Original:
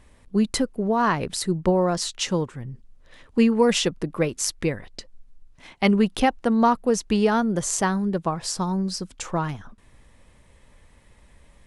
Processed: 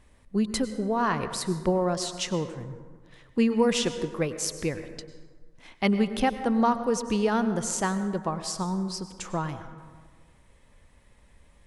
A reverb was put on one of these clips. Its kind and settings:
dense smooth reverb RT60 1.6 s, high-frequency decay 0.45×, pre-delay 85 ms, DRR 10.5 dB
level −4.5 dB

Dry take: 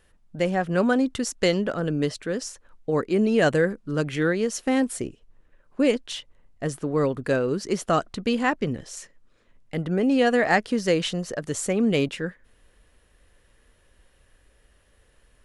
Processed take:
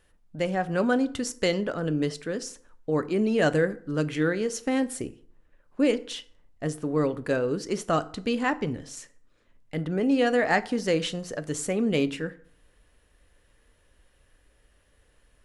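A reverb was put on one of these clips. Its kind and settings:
feedback delay network reverb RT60 0.55 s, low-frequency decay 1×, high-frequency decay 0.65×, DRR 12 dB
level −3 dB

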